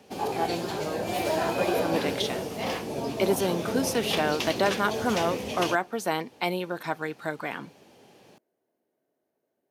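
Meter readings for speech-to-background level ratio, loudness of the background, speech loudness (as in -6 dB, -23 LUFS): 0.5 dB, -30.5 LUFS, -30.0 LUFS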